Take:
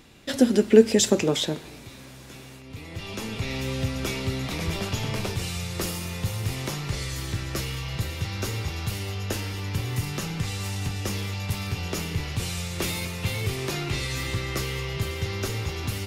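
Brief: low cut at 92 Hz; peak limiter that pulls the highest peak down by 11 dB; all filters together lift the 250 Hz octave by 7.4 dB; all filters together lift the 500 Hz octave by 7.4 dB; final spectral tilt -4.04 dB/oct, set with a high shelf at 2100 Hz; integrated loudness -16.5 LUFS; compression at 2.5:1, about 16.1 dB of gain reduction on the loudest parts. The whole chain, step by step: HPF 92 Hz; bell 250 Hz +7.5 dB; bell 500 Hz +6 dB; high shelf 2100 Hz +6 dB; compressor 2.5:1, threshold -26 dBFS; gain +14.5 dB; limiter -7 dBFS

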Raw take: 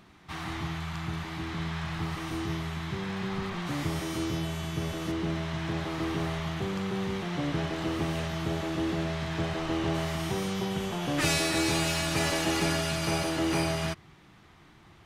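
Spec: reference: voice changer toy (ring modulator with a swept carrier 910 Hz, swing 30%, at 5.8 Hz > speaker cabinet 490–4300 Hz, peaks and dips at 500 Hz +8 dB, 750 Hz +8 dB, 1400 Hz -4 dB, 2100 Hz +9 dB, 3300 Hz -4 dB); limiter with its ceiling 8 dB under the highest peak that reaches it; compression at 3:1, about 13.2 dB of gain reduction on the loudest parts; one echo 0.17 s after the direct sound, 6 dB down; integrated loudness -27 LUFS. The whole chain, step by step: compressor 3:1, threshold -42 dBFS; limiter -35.5 dBFS; echo 0.17 s -6 dB; ring modulator with a swept carrier 910 Hz, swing 30%, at 5.8 Hz; speaker cabinet 490–4300 Hz, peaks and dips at 500 Hz +8 dB, 750 Hz +8 dB, 1400 Hz -4 dB, 2100 Hz +9 dB, 3300 Hz -4 dB; gain +16.5 dB

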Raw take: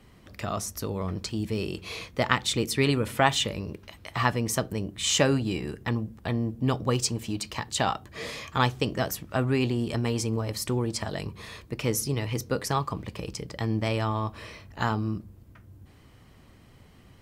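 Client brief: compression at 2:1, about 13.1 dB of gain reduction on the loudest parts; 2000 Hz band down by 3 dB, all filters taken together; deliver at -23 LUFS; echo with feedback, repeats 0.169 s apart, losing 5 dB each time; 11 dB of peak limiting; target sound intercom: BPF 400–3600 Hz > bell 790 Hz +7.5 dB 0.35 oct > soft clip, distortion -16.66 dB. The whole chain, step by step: bell 2000 Hz -3.5 dB; compressor 2:1, threshold -42 dBFS; limiter -27 dBFS; BPF 400–3600 Hz; bell 790 Hz +7.5 dB 0.35 oct; feedback echo 0.169 s, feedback 56%, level -5 dB; soft clip -31.5 dBFS; gain +20 dB

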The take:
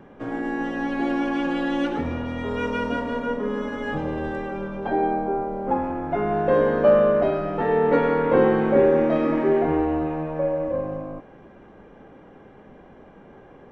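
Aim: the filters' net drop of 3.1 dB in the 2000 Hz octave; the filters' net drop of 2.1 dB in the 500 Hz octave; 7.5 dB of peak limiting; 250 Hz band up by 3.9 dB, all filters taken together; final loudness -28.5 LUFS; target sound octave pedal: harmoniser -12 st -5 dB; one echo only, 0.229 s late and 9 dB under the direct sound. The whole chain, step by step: bell 250 Hz +6 dB; bell 500 Hz -4 dB; bell 2000 Hz -4 dB; limiter -13.5 dBFS; echo 0.229 s -9 dB; harmoniser -12 st -5 dB; gain -6 dB

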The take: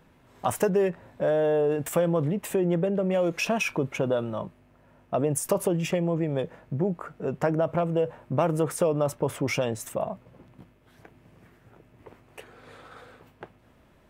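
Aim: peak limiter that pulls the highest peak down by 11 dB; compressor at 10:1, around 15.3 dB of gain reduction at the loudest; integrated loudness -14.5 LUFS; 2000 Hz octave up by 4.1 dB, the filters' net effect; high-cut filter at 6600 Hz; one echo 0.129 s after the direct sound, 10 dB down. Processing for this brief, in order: LPF 6600 Hz; bell 2000 Hz +5.5 dB; compressor 10:1, threshold -35 dBFS; limiter -32.5 dBFS; echo 0.129 s -10 dB; gain +27.5 dB

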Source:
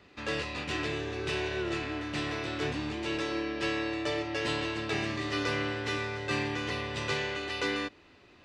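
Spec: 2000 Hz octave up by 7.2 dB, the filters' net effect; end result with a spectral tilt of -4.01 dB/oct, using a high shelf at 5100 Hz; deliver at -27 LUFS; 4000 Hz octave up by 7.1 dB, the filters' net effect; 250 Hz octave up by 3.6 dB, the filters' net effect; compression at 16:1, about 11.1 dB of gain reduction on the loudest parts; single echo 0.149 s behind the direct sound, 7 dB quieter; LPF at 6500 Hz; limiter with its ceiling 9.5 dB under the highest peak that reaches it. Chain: LPF 6500 Hz; bell 250 Hz +5 dB; bell 2000 Hz +6.5 dB; bell 4000 Hz +3.5 dB; high shelf 5100 Hz +9 dB; compressor 16:1, threshold -33 dBFS; limiter -31 dBFS; echo 0.149 s -7 dB; gain +11 dB

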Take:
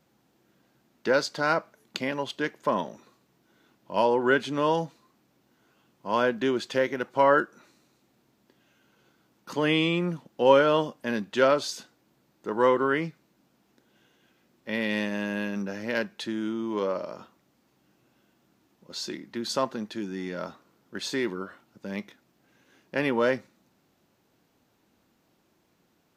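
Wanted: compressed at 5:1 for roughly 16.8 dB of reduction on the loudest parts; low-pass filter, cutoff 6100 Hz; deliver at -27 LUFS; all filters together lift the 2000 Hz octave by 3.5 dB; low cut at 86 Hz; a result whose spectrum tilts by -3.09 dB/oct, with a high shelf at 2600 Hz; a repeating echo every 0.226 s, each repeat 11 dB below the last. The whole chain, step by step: HPF 86 Hz; LPF 6100 Hz; bell 2000 Hz +6.5 dB; high shelf 2600 Hz -4 dB; compressor 5:1, threshold -33 dBFS; feedback echo 0.226 s, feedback 28%, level -11 dB; gain +10.5 dB

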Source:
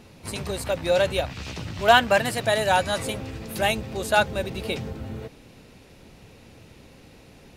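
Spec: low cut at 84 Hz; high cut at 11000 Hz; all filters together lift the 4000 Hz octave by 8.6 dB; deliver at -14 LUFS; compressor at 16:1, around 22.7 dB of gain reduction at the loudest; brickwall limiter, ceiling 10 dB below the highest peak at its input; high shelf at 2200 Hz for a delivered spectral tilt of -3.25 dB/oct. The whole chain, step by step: HPF 84 Hz; LPF 11000 Hz; high shelf 2200 Hz +6.5 dB; bell 4000 Hz +5 dB; compressor 16:1, threshold -31 dBFS; gain +24.5 dB; limiter -3 dBFS

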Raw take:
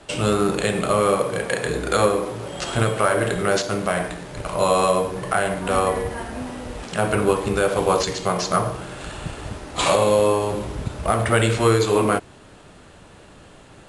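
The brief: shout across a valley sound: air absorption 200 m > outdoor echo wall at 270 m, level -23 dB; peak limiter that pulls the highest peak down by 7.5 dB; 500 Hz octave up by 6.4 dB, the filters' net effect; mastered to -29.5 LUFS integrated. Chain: bell 500 Hz +8 dB; limiter -7.5 dBFS; air absorption 200 m; outdoor echo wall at 270 m, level -23 dB; gain -9.5 dB

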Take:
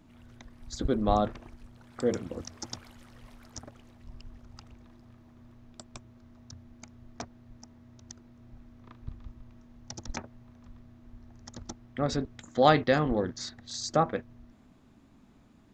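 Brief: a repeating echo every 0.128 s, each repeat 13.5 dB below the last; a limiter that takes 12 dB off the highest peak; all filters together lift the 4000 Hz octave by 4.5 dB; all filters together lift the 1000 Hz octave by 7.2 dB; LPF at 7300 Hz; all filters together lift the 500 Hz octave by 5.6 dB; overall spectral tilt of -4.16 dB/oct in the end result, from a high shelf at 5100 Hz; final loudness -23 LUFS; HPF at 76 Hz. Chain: HPF 76 Hz; LPF 7300 Hz; bell 500 Hz +4 dB; bell 1000 Hz +8.5 dB; bell 4000 Hz +8 dB; high shelf 5100 Hz -6.5 dB; limiter -12 dBFS; feedback echo 0.128 s, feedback 21%, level -13.5 dB; gain +5.5 dB

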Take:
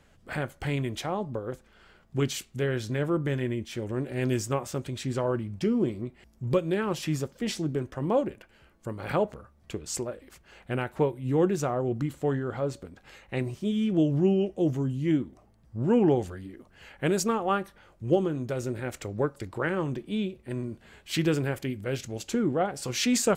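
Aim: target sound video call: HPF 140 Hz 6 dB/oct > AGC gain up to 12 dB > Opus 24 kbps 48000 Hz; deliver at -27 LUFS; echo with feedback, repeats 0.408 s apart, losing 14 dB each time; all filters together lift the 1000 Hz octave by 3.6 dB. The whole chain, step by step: HPF 140 Hz 6 dB/oct; bell 1000 Hz +5 dB; feedback echo 0.408 s, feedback 20%, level -14 dB; AGC gain up to 12 dB; gain -3 dB; Opus 24 kbps 48000 Hz

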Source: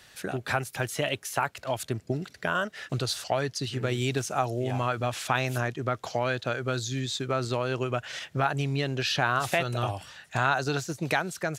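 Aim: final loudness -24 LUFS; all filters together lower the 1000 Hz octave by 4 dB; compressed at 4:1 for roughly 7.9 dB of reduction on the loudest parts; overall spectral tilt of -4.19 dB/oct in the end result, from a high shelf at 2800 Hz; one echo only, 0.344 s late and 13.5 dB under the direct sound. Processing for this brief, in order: bell 1000 Hz -7.5 dB; high shelf 2800 Hz +8.5 dB; compressor 4:1, threshold -30 dBFS; echo 0.344 s -13.5 dB; gain +9.5 dB

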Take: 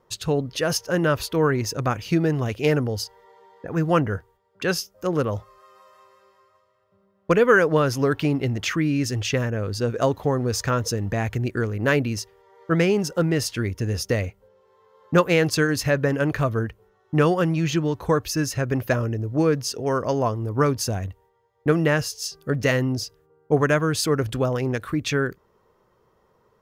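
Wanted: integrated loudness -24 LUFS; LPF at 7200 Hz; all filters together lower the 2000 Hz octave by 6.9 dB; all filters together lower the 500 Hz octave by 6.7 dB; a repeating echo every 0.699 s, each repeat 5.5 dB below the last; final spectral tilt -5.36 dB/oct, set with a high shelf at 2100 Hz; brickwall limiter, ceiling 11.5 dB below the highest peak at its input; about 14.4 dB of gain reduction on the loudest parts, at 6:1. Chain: LPF 7200 Hz; bell 500 Hz -7.5 dB; bell 2000 Hz -6.5 dB; high shelf 2100 Hz -4.5 dB; compressor 6:1, threshold -33 dBFS; limiter -32 dBFS; feedback echo 0.699 s, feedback 53%, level -5.5 dB; gain +16.5 dB

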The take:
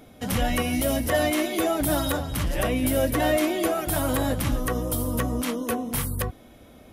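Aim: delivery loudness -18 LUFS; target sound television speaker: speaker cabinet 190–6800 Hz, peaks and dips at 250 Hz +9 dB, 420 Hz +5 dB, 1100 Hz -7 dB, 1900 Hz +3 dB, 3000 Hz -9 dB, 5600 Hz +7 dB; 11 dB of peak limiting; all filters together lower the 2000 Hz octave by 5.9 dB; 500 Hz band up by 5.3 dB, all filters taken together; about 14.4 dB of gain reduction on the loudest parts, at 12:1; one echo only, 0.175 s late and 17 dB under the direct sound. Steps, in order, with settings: bell 500 Hz +5.5 dB; bell 2000 Hz -8 dB; compressor 12:1, threshold -30 dBFS; limiter -29.5 dBFS; speaker cabinet 190–6800 Hz, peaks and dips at 250 Hz +9 dB, 420 Hz +5 dB, 1100 Hz -7 dB, 1900 Hz +3 dB, 3000 Hz -9 dB, 5600 Hz +7 dB; echo 0.175 s -17 dB; gain +17.5 dB

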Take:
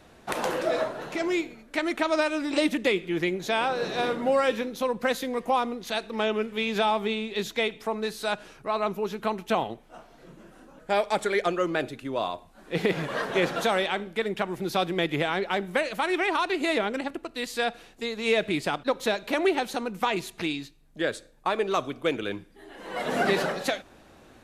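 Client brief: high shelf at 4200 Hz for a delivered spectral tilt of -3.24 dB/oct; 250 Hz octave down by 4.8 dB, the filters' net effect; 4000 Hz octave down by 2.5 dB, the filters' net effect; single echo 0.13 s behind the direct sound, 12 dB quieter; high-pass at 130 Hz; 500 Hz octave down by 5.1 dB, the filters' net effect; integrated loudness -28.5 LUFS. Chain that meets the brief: HPF 130 Hz; bell 250 Hz -4 dB; bell 500 Hz -5.5 dB; bell 4000 Hz -6 dB; high shelf 4200 Hz +6 dB; echo 0.13 s -12 dB; gain +2 dB

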